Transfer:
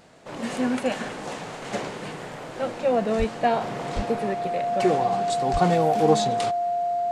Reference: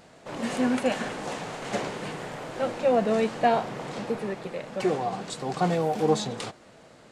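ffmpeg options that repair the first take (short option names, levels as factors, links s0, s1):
-filter_complex "[0:a]bandreject=f=700:w=30,asplit=3[s0][s1][s2];[s0]afade=t=out:st=3.18:d=0.02[s3];[s1]highpass=f=140:w=0.5412,highpass=f=140:w=1.3066,afade=t=in:st=3.18:d=0.02,afade=t=out:st=3.3:d=0.02[s4];[s2]afade=t=in:st=3.3:d=0.02[s5];[s3][s4][s5]amix=inputs=3:normalize=0,asplit=3[s6][s7][s8];[s6]afade=t=out:st=3.95:d=0.02[s9];[s7]highpass=f=140:w=0.5412,highpass=f=140:w=1.3066,afade=t=in:st=3.95:d=0.02,afade=t=out:st=4.07:d=0.02[s10];[s8]afade=t=in:st=4.07:d=0.02[s11];[s9][s10][s11]amix=inputs=3:normalize=0,asplit=3[s12][s13][s14];[s12]afade=t=out:st=5.52:d=0.02[s15];[s13]highpass=f=140:w=0.5412,highpass=f=140:w=1.3066,afade=t=in:st=5.52:d=0.02,afade=t=out:st=5.64:d=0.02[s16];[s14]afade=t=in:st=5.64:d=0.02[s17];[s15][s16][s17]amix=inputs=3:normalize=0,asetnsamples=n=441:p=0,asendcmd='3.61 volume volume -3.5dB',volume=1"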